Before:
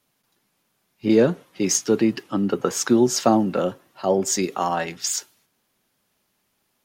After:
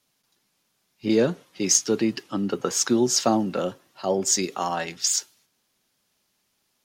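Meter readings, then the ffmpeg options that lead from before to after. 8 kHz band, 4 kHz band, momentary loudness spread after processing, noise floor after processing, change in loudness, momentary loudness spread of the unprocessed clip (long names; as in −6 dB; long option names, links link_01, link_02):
+2.5 dB, +2.5 dB, 9 LU, −73 dBFS, −2.0 dB, 8 LU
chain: -af "equalizer=frequency=5400:width_type=o:width=1.8:gain=7,volume=-4dB"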